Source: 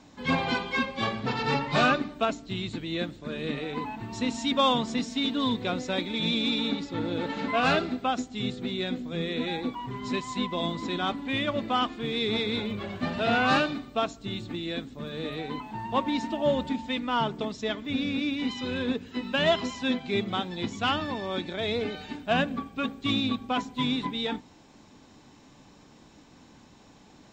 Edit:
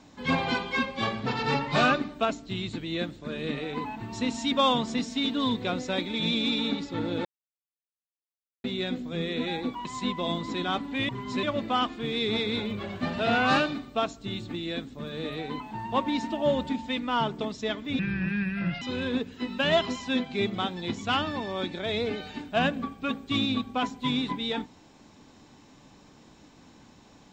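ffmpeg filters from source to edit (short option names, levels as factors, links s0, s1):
-filter_complex "[0:a]asplit=8[s0][s1][s2][s3][s4][s5][s6][s7];[s0]atrim=end=7.25,asetpts=PTS-STARTPTS,afade=t=out:st=7.246:d=0.004:c=hsin[s8];[s1]atrim=start=7.25:end=8.64,asetpts=PTS-STARTPTS,volume=0[s9];[s2]atrim=start=8.64:end=9.852,asetpts=PTS-STARTPTS,afade=t=in:d=0.004:c=hsin[s10];[s3]atrim=start=10.188:end=11.432[s11];[s4]atrim=start=9.848:end=10.192[s12];[s5]atrim=start=11.428:end=17.994[s13];[s6]atrim=start=17.99:end=18.56,asetpts=PTS-STARTPTS,asetrate=30429,aresample=44100,atrim=end_sample=36430,asetpts=PTS-STARTPTS[s14];[s7]atrim=start=18.556[s15];[s8][s9][s10]concat=n=3:v=0:a=1[s16];[s16][s11]acrossfade=d=0.004:c1=hsin:c2=hsin[s17];[s17][s12]acrossfade=d=0.004:c1=hsin:c2=hsin[s18];[s18][s13]acrossfade=d=0.004:c1=hsin:c2=hsin[s19];[s19][s14]acrossfade=d=0.004:c1=hsin:c2=hsin[s20];[s20][s15]acrossfade=d=0.004:c1=hsin:c2=hsin"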